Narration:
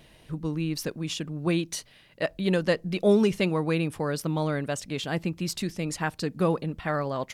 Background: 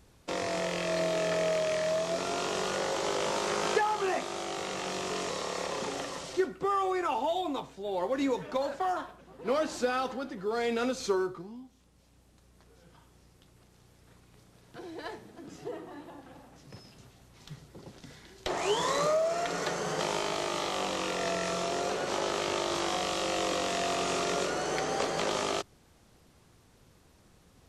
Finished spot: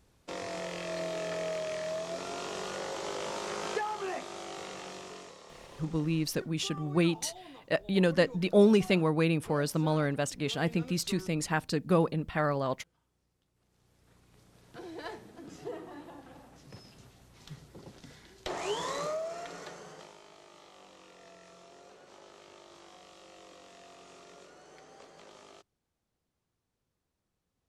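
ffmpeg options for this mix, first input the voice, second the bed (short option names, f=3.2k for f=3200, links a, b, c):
-filter_complex "[0:a]adelay=5500,volume=-1dB[a];[1:a]volume=10.5dB,afade=t=out:st=4.62:d=0.75:silence=0.266073,afade=t=in:st=13.53:d=1.11:silence=0.149624,afade=t=out:st=17.76:d=2.39:silence=0.0794328[b];[a][b]amix=inputs=2:normalize=0"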